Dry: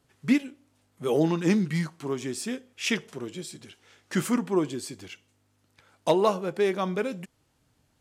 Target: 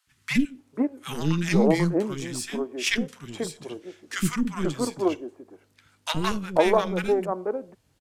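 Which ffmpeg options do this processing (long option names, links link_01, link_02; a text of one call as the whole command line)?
ffmpeg -i in.wav -filter_complex "[0:a]acontrast=62,aeval=exprs='0.501*(cos(1*acos(clip(val(0)/0.501,-1,1)))-cos(1*PI/2))+0.0794*(cos(2*acos(clip(val(0)/0.501,-1,1)))-cos(2*PI/2))+0.0631*(cos(3*acos(clip(val(0)/0.501,-1,1)))-cos(3*PI/2))+0.0112*(cos(6*acos(clip(val(0)/0.501,-1,1)))-cos(6*PI/2))+0.00316*(cos(8*acos(clip(val(0)/0.501,-1,1)))-cos(8*PI/2))':channel_layout=same,acrossover=split=280|1100[link_01][link_02][link_03];[link_01]adelay=70[link_04];[link_02]adelay=490[link_05];[link_04][link_05][link_03]amix=inputs=3:normalize=0" out.wav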